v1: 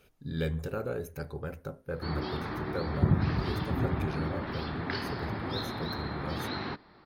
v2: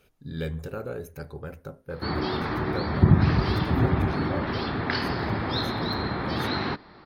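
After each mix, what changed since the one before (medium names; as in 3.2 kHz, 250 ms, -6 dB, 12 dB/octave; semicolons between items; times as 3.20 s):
background +7.5 dB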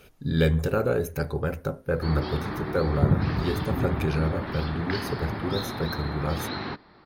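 speech +10.0 dB; background -4.5 dB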